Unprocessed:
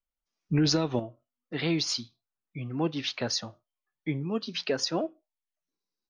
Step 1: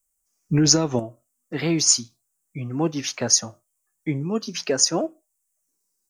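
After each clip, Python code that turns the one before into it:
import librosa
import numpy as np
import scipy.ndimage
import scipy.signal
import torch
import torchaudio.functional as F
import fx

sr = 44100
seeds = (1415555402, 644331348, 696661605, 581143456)

y = fx.high_shelf_res(x, sr, hz=5500.0, db=13.5, q=3.0)
y = y * librosa.db_to_amplitude(5.5)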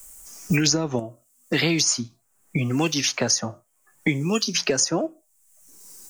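y = fx.band_squash(x, sr, depth_pct=100)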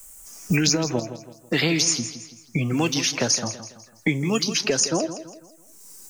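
y = fx.echo_feedback(x, sr, ms=165, feedback_pct=40, wet_db=-12.0)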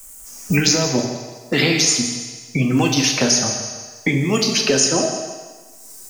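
y = fx.rev_fdn(x, sr, rt60_s=1.4, lf_ratio=0.75, hf_ratio=0.95, size_ms=23.0, drr_db=2.0)
y = y * librosa.db_to_amplitude(3.5)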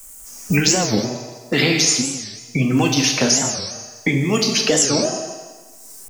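y = fx.record_warp(x, sr, rpm=45.0, depth_cents=250.0)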